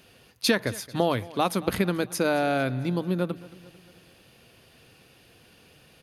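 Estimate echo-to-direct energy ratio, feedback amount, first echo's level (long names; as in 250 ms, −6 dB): −18.5 dB, 54%, −20.0 dB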